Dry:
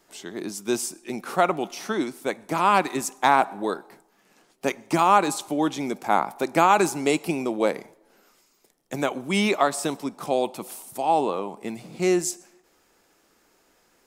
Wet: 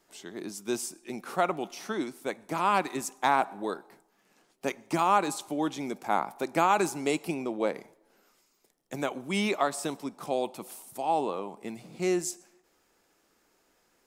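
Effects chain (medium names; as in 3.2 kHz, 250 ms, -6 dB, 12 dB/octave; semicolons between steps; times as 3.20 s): 7.34–7.76 s: treble shelf 5.8 kHz -8 dB; trim -6 dB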